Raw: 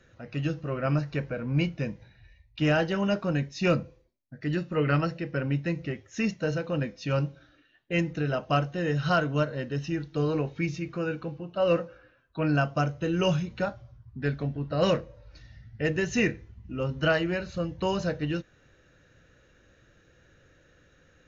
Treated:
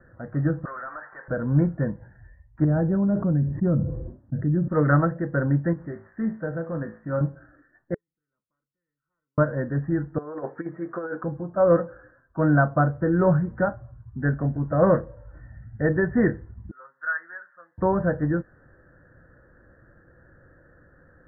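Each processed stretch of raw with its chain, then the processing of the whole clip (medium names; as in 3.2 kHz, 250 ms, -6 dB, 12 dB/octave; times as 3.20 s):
0.65–1.28 s: high-pass 1.2 kHz + compression 3:1, threshold -47 dBFS + overdrive pedal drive 19 dB, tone 2.8 kHz, clips at -31.5 dBFS
2.64–4.68 s: band-pass filter 100 Hz, Q 0.65 + level flattener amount 70%
5.73–7.21 s: zero-crossing glitches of -29 dBFS + feedback comb 55 Hz, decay 0.34 s, mix 80%
7.94–9.38 s: inverse Chebyshev high-pass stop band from 1.8 kHz, stop band 80 dB + spectrum-flattening compressor 10:1
10.18–11.24 s: high-pass 410 Hz + compressor with a negative ratio -35 dBFS, ratio -0.5
16.71–17.78 s: ladder band-pass 1.8 kHz, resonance 50% + comb 5.6 ms, depth 42%
whole clip: steep low-pass 1.8 kHz 96 dB/octave; band-stop 430 Hz, Q 12; trim +6 dB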